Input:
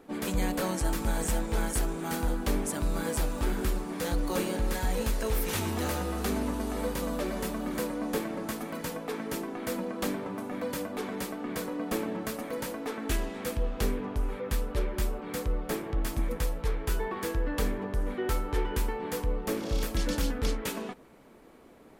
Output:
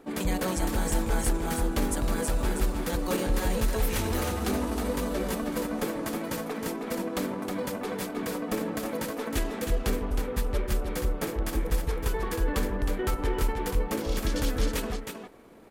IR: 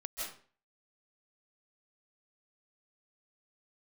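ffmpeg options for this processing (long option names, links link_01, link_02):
-af "atempo=1.4,aecho=1:1:315:0.501,volume=1.5dB"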